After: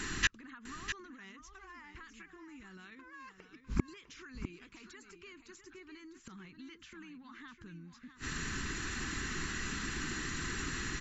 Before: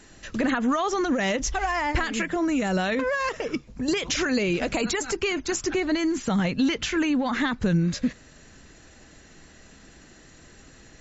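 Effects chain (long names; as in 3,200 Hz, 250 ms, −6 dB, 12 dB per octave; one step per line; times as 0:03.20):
drawn EQ curve 390 Hz 0 dB, 590 Hz −21 dB, 1,100 Hz +6 dB, 5,800 Hz 0 dB
gate with flip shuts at −25 dBFS, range −39 dB
on a send: single-tap delay 652 ms −9.5 dB
on the sum: level +10.5 dB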